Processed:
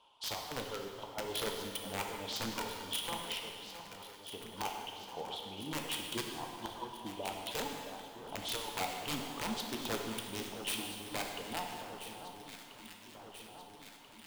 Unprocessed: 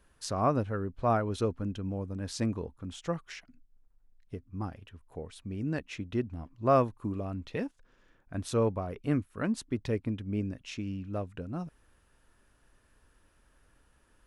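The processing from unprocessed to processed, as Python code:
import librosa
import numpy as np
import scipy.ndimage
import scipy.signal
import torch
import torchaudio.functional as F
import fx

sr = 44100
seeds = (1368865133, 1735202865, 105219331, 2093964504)

p1 = fx.block_float(x, sr, bits=5)
p2 = fx.double_bandpass(p1, sr, hz=1700.0, octaves=1.8)
p3 = fx.dereverb_blind(p2, sr, rt60_s=1.4)
p4 = fx.over_compress(p3, sr, threshold_db=-49.0, ratio=-0.5)
p5 = (np.mod(10.0 ** (41.5 / 20.0) * p4 + 1.0, 2.0) - 1.0) / 10.0 ** (41.5 / 20.0)
p6 = p5 + fx.echo_alternate(p5, sr, ms=668, hz=1400.0, feedback_pct=80, wet_db=-10.0, dry=0)
p7 = fx.rev_plate(p6, sr, seeds[0], rt60_s=2.2, hf_ratio=0.9, predelay_ms=0, drr_db=1.5)
y = p7 * 10.0 ** (11.5 / 20.0)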